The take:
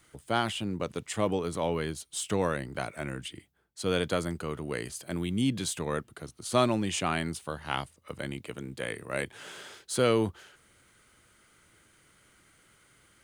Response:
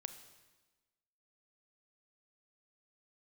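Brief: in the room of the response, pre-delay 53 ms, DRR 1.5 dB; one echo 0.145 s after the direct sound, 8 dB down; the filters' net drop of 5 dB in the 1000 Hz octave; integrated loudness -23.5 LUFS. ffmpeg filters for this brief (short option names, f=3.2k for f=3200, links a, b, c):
-filter_complex "[0:a]equalizer=f=1k:t=o:g=-7,aecho=1:1:145:0.398,asplit=2[a][b];[1:a]atrim=start_sample=2205,adelay=53[c];[b][c]afir=irnorm=-1:irlink=0,volume=2dB[d];[a][d]amix=inputs=2:normalize=0,volume=6.5dB"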